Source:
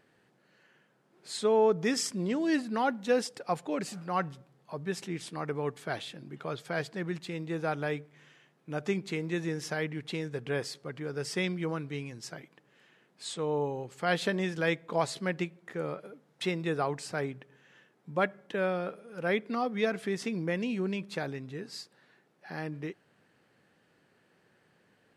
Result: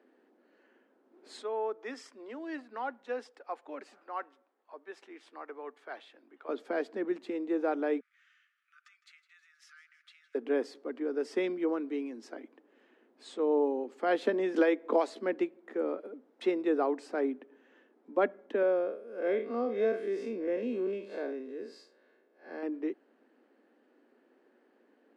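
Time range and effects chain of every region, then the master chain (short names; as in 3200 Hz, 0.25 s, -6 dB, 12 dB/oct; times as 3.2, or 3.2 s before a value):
1.42–6.49 HPF 1200 Hz + tilt -3 dB/oct
8–10.35 compressor 8:1, threshold -42 dBFS + Chebyshev high-pass 1200 Hz, order 8 + feedback echo 0.159 s, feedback 56%, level -16 dB
14.54–15.1 HPF 230 Hz + three-band squash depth 100%
18.62–22.63 time blur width 0.115 s + notch 1000 Hz, Q 8.3 + comb 1.9 ms, depth 50%
whole clip: steep high-pass 240 Hz 72 dB/oct; tilt -4.5 dB/oct; gain -1.5 dB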